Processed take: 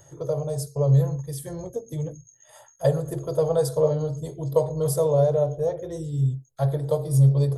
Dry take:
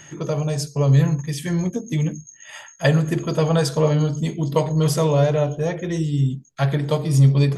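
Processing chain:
drawn EQ curve 130 Hz 0 dB, 190 Hz −22 dB, 340 Hz −10 dB, 500 Hz +2 dB, 1,200 Hz −11 dB, 2,600 Hz −26 dB, 3,700 Hz −12 dB, 6,300 Hz −11 dB, 10,000 Hz +2 dB

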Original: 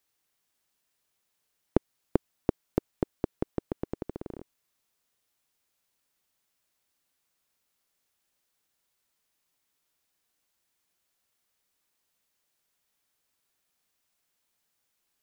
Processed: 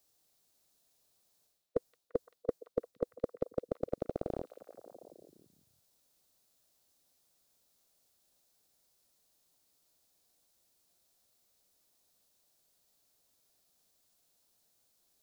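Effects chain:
flat-topped bell 1,400 Hz −9 dB
reversed playback
downward compressor 16 to 1, threshold −34 dBFS, peak gain reduction 17 dB
reversed playback
formants moved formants +5 semitones
echo through a band-pass that steps 171 ms, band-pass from 3,200 Hz, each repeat −0.7 octaves, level −6 dB
level +5 dB

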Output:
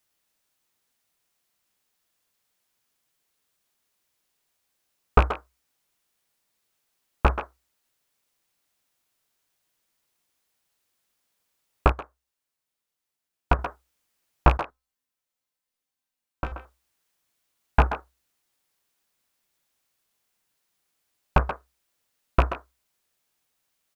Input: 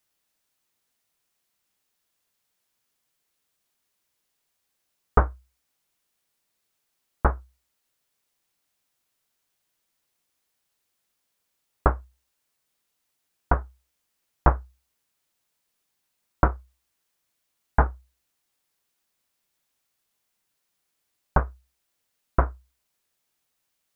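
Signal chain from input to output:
loose part that buzzes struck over −19 dBFS, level −17 dBFS
0:14.57–0:16.52: tuned comb filter 260 Hz, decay 0.42 s, harmonics all, mix 80%
far-end echo of a speakerphone 130 ms, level −8 dB
0:11.92–0:13.59: expander for the loud parts 1.5 to 1, over −34 dBFS
level +1 dB

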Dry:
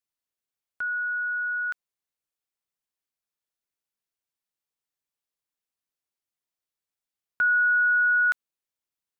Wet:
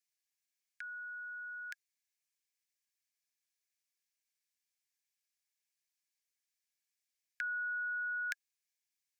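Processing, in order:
Chebyshev high-pass with heavy ripple 1,600 Hz, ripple 6 dB
level +5 dB

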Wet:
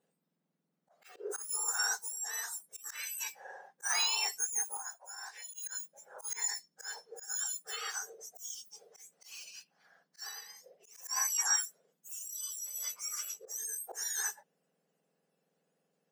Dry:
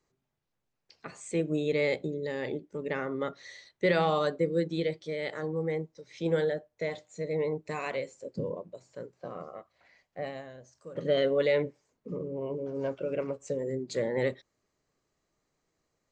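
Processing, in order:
frequency axis turned over on the octave scale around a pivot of 1,800 Hz
0:04.77–0:05.54: four-pole ladder high-pass 510 Hz, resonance 35%
volume swells 106 ms

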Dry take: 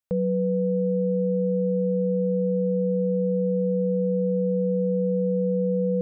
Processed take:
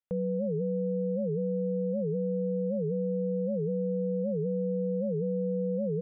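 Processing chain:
downsampling to 8,000 Hz
wow of a warped record 78 rpm, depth 250 cents
level −6.5 dB

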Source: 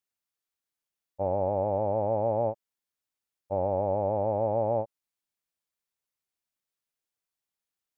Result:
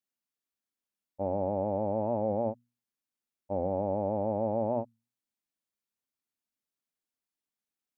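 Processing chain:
parametric band 240 Hz +11 dB 0.76 octaves
mains-hum notches 60/120/180/240 Hz
wow of a warped record 45 rpm, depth 100 cents
level −4.5 dB

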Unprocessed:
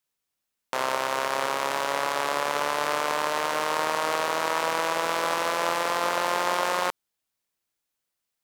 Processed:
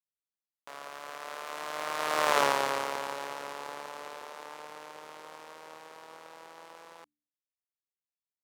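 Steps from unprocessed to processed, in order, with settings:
source passing by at 0:02.37, 27 m/s, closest 4.6 metres
hum removal 73.72 Hz, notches 4
level +2.5 dB

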